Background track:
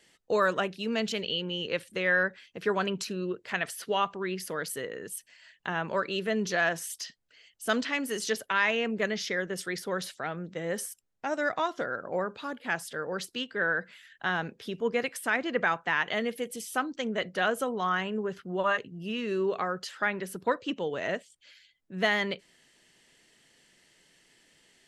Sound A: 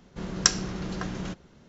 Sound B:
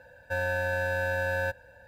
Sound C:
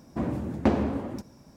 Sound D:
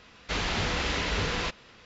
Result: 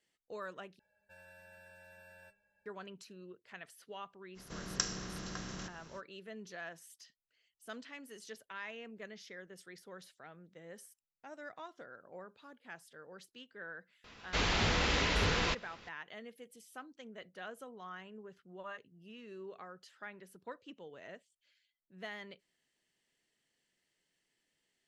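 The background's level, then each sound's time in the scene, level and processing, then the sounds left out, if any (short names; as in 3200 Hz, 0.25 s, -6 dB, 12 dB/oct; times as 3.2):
background track -19 dB
0.79 replace with B -7.5 dB + metallic resonator 200 Hz, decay 0.34 s, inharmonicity 0.008
4.34 add A -13.5 dB, fades 0.05 s + per-bin compression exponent 0.6
14.04 add D -2 dB
not used: C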